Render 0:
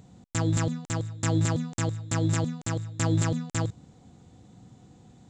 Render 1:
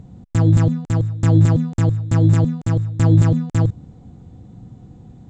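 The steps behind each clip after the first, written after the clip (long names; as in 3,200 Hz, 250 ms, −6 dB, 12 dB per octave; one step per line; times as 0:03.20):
spectral tilt −3 dB per octave
level +3.5 dB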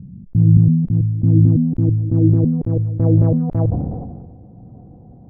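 low-pass filter sweep 190 Hz → 660 Hz, 0:00.71–0:03.61
level that may fall only so fast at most 36 dB per second
level −2 dB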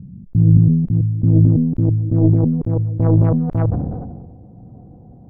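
stylus tracing distortion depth 0.25 ms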